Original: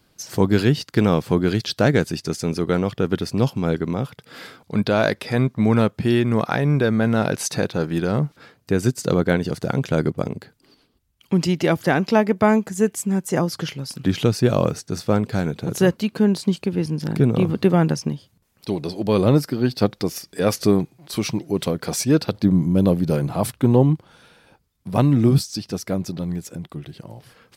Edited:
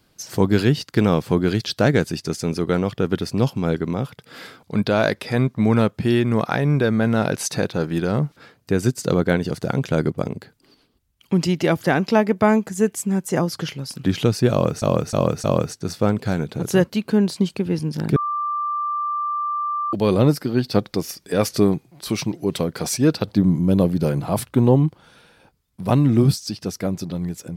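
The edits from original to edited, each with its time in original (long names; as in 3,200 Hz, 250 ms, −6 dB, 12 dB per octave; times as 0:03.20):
0:14.51–0:14.82: repeat, 4 plays
0:17.23–0:19.00: beep over 1,180 Hz −21 dBFS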